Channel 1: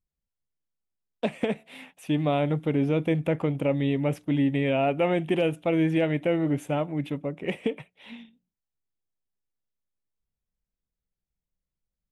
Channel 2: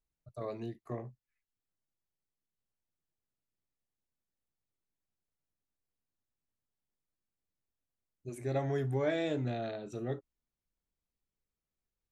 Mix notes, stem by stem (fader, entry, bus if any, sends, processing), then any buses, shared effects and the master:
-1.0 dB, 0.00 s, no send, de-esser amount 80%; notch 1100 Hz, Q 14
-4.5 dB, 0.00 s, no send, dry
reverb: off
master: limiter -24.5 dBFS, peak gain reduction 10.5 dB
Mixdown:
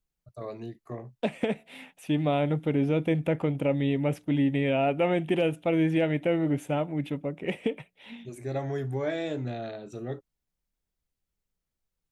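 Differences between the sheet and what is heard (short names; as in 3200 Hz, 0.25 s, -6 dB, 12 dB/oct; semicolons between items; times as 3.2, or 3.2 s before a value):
stem 2 -4.5 dB -> +1.5 dB; master: missing limiter -24.5 dBFS, peak gain reduction 10.5 dB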